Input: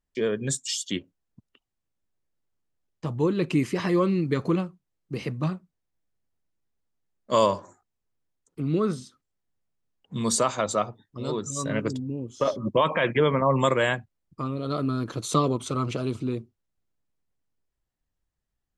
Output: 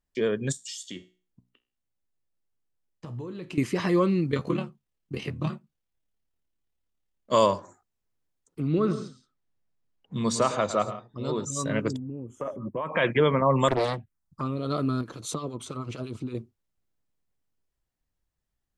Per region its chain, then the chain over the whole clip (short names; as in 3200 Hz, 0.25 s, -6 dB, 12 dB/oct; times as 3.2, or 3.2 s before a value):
0.52–3.58 compressor, threshold -29 dBFS + resonator 61 Hz, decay 0.39 s
4.31–7.32 bell 3000 Hz +5 dB 0.61 oct + AM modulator 36 Hz, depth 80% + doubler 14 ms -5 dB
8.67–11.45 air absorption 77 m + tapped delay 0.108/0.136/0.17 s -12.5/-17.5/-17 dB
11.96–12.94 Butterworth band-stop 4400 Hz, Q 0.72 + compressor 2:1, threshold -35 dBFS
13.68–14.41 envelope phaser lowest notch 330 Hz, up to 2000 Hz, full sweep at -20.5 dBFS + Doppler distortion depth 0.72 ms
15.01–16.35 compressor 4:1, threshold -27 dBFS + harmonic tremolo 8.9 Hz, crossover 1100 Hz
whole clip: dry